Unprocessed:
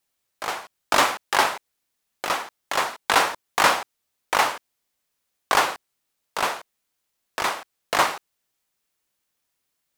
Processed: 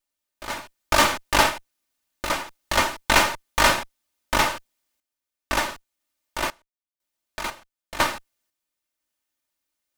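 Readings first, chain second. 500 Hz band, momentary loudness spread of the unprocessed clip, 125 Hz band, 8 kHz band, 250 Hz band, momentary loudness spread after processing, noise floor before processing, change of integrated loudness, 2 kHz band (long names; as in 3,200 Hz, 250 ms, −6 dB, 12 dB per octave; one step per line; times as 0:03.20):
0.0 dB, 16 LU, +10.0 dB, +1.5 dB, +5.0 dB, 18 LU, −78 dBFS, +0.5 dB, +0.5 dB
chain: lower of the sound and its delayed copy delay 3.3 ms
sample-and-hold tremolo 2 Hz, depth 95%
level +4 dB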